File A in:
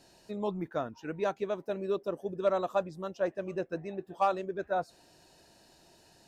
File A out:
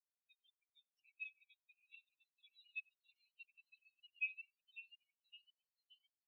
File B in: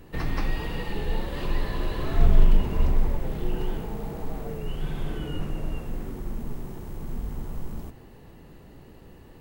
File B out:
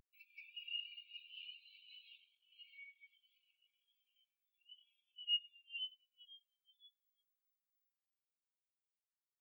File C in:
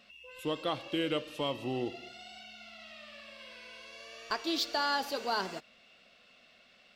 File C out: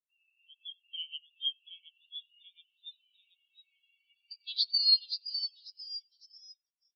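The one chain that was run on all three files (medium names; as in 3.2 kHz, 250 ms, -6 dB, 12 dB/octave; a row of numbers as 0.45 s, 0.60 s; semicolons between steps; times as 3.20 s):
ever faster or slower copies 786 ms, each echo +1 st, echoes 3; in parallel at +3 dB: compression, threshold -33 dBFS; on the sum: saturation -7 dBFS; brick-wall FIR high-pass 2.2 kHz; delay 93 ms -9.5 dB; spectral contrast expander 4:1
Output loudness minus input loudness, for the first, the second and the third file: -14.0 LU, -13.0 LU, +3.5 LU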